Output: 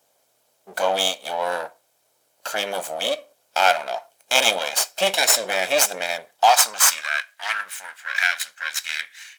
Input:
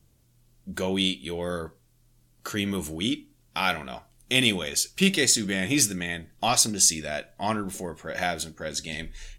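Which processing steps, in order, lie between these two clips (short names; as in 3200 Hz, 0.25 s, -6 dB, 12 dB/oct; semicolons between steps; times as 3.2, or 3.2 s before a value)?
minimum comb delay 1.3 ms; high-pass sweep 620 Hz -> 1700 Hz, 6.23–7.29; gain +5.5 dB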